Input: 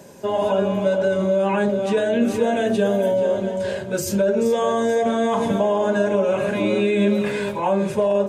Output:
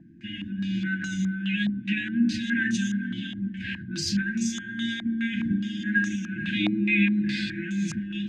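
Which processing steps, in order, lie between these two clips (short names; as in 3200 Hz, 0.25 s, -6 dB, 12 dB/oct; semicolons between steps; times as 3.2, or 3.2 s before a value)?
narrowing echo 0.287 s, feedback 82%, band-pass 440 Hz, level -9.5 dB; FFT band-reject 350–1500 Hz; stepped low-pass 4.8 Hz 710–6300 Hz; gain -3 dB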